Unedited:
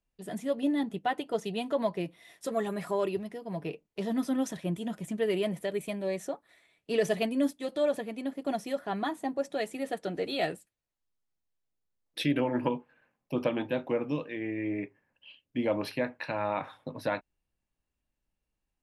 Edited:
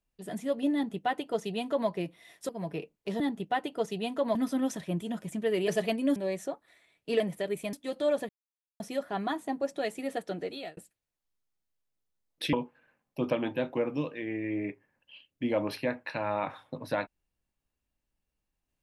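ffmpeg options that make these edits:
-filter_complex "[0:a]asplit=12[a][b][c][d][e][f][g][h][i][j][k][l];[a]atrim=end=2.492[m];[b]atrim=start=3.398:end=4.112[n];[c]atrim=start=0.738:end=1.892[o];[d]atrim=start=4.108:end=5.442[p];[e]atrim=start=7.008:end=7.492[q];[f]atrim=start=5.968:end=7.012[r];[g]atrim=start=5.438:end=5.972[s];[h]atrim=start=7.488:end=8.05,asetpts=PTS-STARTPTS,afade=t=out:st=0.558:d=0.004:c=hsin[t];[i]atrim=start=8.05:end=8.56,asetpts=PTS-STARTPTS,volume=0[u];[j]atrim=start=8.56:end=10.53,asetpts=PTS-STARTPTS,afade=t=in:d=0.004:c=hsin,afade=t=out:st=1.32:d=0.65:c=qsin[v];[k]atrim=start=10.53:end=12.292,asetpts=PTS-STARTPTS,afade=t=in:d=0.004:c=hsin[w];[l]atrim=start=12.668[x];[m][n]acrossfade=d=0.004:c1=hsin:c2=hsin[y];[y][o]acrossfade=d=0.004:c1=hsin:c2=hsin[z];[z][p]acrossfade=d=0.004:c1=hsin:c2=hsin[aa];[aa][q]acrossfade=d=0.004:c1=hsin:c2=hsin[ab];[ab][r]acrossfade=d=0.004:c1=hsin:c2=hsin[ac];[ac][s]acrossfade=d=0.004:c1=hsin:c2=hsin[ad];[t][u][v][w]concat=n=4:v=0:a=1[ae];[ad][ae]acrossfade=d=0.004:c1=hsin:c2=hsin[af];[af][x]acrossfade=d=0.004:c1=hsin:c2=hsin"

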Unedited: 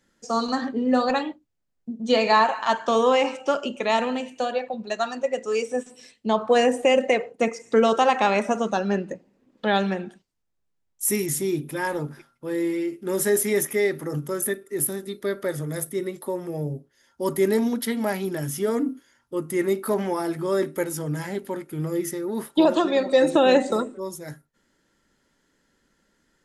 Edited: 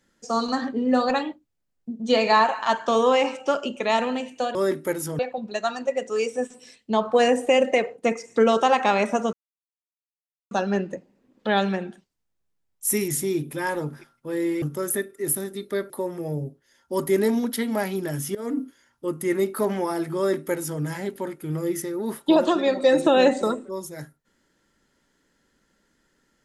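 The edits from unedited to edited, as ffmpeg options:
-filter_complex "[0:a]asplit=7[a][b][c][d][e][f][g];[a]atrim=end=4.552[h];[b]atrim=start=20.458:end=21.102[i];[c]atrim=start=4.548:end=8.69,asetpts=PTS-STARTPTS,afade=t=out:st=4.138:d=0.004:c=hsin,apad=pad_dur=1.18[j];[d]atrim=start=8.69:end=12.802,asetpts=PTS-STARTPTS,afade=t=in:d=0.004:c=hsin[k];[e]atrim=start=14.138:end=15.422[l];[f]atrim=start=16.188:end=18.64,asetpts=PTS-STARTPTS,afade=t=out:st=2.448:d=0.004:c=hsin:silence=0.112202[m];[g]atrim=start=18.64,asetpts=PTS-STARTPTS,afade=t=in:d=0.25:silence=0.112202[n];[h][i]acrossfade=d=0.004:c1=hsin:c2=hsin[o];[j][k]concat=n=2:v=0:a=1[p];[o][p]acrossfade=d=0.004:c1=hsin:c2=hsin[q];[q][l]acrossfade=d=0.004:c1=hsin:c2=hsin[r];[m][n]concat=n=2:v=0:a=1[s];[r][s]acrossfade=d=0.004:c1=hsin:c2=hsin"

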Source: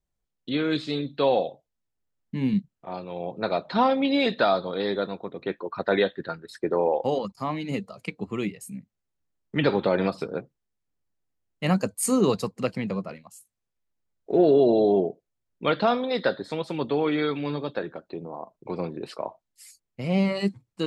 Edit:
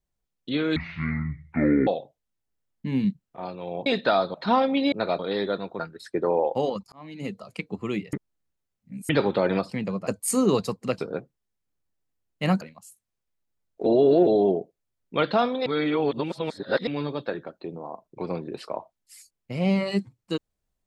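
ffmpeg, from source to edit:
-filter_complex "[0:a]asplit=19[a][b][c][d][e][f][g][h][i][j][k][l][m][n][o][p][q][r][s];[a]atrim=end=0.764[t];[b]atrim=start=0.76:end=1.36,asetpts=PTS-STARTPTS,asetrate=23814,aresample=44100[u];[c]atrim=start=1.356:end=3.352[v];[d]atrim=start=4.198:end=4.682[w];[e]atrim=start=3.618:end=4.202[x];[f]atrim=start=3.348:end=3.622[y];[g]atrim=start=4.678:end=5.282[z];[h]atrim=start=6.278:end=7.41,asetpts=PTS-STARTPTS,afade=t=out:st=1.128:d=0.004:c=hsin[aa];[i]atrim=start=7.41:end=8.622,asetpts=PTS-STARTPTS,afade=t=in:d=0.51[ab];[j]atrim=start=8.618:end=9.582,asetpts=PTS-STARTPTS,areverse[ac];[k]atrim=start=9.578:end=10.192[ad];[l]atrim=start=12.728:end=13.102[ae];[m]atrim=start=11.818:end=12.732[af];[n]atrim=start=10.188:end=11.822[ag];[o]atrim=start=13.098:end=14.352[ah];[p]atrim=start=14.348:end=14.762,asetpts=PTS-STARTPTS,areverse[ai];[q]atrim=start=14.758:end=16.152[aj];[r]atrim=start=16.148:end=17.362,asetpts=PTS-STARTPTS,areverse[ak];[s]atrim=start=17.358[al];[t][u]acrossfade=d=0.004:c1=hsin:c2=hsin[am];[am][v]acrossfade=d=0.004:c1=hsin:c2=hsin[an];[an][w]acrossfade=d=0.004:c1=hsin:c2=hsin[ao];[ao][x]acrossfade=d=0.004:c1=hsin:c2=hsin[ap];[ap][y]acrossfade=d=0.004:c1=hsin:c2=hsin[aq];[aq][z]acrossfade=d=0.004:c1=hsin:c2=hsin[ar];[aa][ab]concat=n=2:v=0:a=1[as];[ar][as]acrossfade=d=0.004:c1=hsin:c2=hsin[at];[at][ac]acrossfade=d=0.004:c1=hsin:c2=hsin[au];[au][ad]acrossfade=d=0.004:c1=hsin:c2=hsin[av];[av][ae]acrossfade=d=0.004:c1=hsin:c2=hsin[aw];[aw][af]acrossfade=d=0.004:c1=hsin:c2=hsin[ax];[ax][ag]acrossfade=d=0.004:c1=hsin:c2=hsin[ay];[ay][ah]acrossfade=d=0.004:c1=hsin:c2=hsin[az];[az][ai]acrossfade=d=0.004:c1=hsin:c2=hsin[ba];[ba][aj]acrossfade=d=0.004:c1=hsin:c2=hsin[bb];[bb][ak]acrossfade=d=0.004:c1=hsin:c2=hsin[bc];[bc][al]acrossfade=d=0.004:c1=hsin:c2=hsin"

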